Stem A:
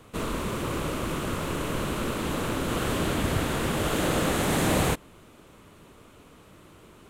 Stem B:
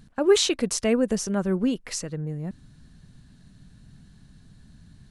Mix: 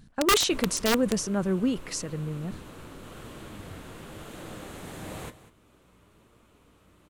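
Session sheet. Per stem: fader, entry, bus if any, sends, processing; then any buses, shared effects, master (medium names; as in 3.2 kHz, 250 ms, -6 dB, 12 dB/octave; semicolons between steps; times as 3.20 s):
-4.5 dB, 0.35 s, no send, echo send -21.5 dB, flange 1 Hz, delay 8.4 ms, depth 2.8 ms, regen +70%; hum 60 Hz, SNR 30 dB; auto duck -8 dB, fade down 1.20 s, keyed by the second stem
-2.0 dB, 0.00 s, no send, no echo send, integer overflow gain 13 dB; decay stretcher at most 130 dB/s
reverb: none
echo: delay 196 ms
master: none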